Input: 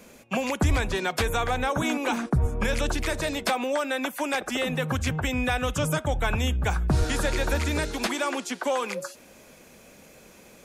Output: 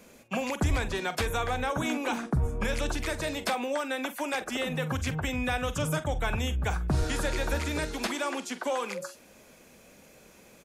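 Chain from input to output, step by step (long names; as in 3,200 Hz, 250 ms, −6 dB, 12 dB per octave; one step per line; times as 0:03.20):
double-tracking delay 45 ms −13 dB
level −4 dB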